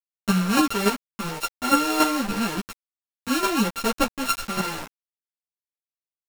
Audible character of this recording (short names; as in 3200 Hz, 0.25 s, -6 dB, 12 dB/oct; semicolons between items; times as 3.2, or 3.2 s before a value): a buzz of ramps at a fixed pitch in blocks of 32 samples; chopped level 3.5 Hz, depth 60%, duty 10%; a quantiser's noise floor 6-bit, dither none; a shimmering, thickened sound